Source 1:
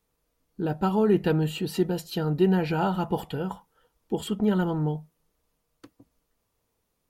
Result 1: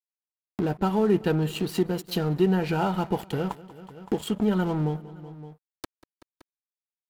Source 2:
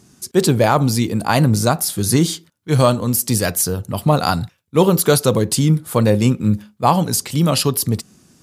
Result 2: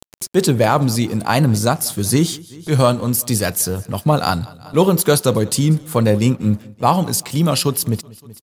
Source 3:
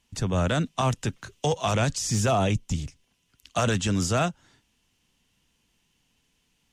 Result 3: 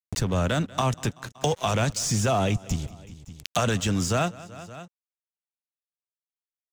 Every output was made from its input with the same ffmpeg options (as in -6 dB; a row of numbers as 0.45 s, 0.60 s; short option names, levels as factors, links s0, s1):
-af "aeval=exprs='sgn(val(0))*max(abs(val(0))-0.00841,0)':c=same,aecho=1:1:189|378|567:0.0668|0.0334|0.0167,acompressor=mode=upward:threshold=0.1:ratio=2.5"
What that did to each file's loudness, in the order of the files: 0.0 LU, -0.5 LU, 0.0 LU